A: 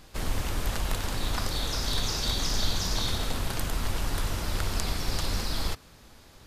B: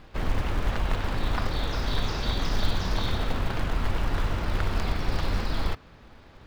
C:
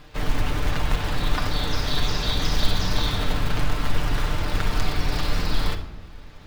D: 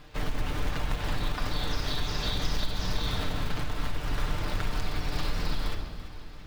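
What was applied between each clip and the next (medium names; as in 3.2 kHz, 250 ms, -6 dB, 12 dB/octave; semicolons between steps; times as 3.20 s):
low-pass 2.7 kHz 12 dB/octave; in parallel at -7 dB: short-mantissa float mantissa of 2-bit
treble shelf 2.8 kHz +8 dB; on a send at -3 dB: reverberation RT60 0.90 s, pre-delay 7 ms
compression, threshold -20 dBFS, peak gain reduction 9.5 dB; on a send: echo whose repeats swap between lows and highs 168 ms, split 1.1 kHz, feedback 73%, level -11 dB; on the sum: trim -3.5 dB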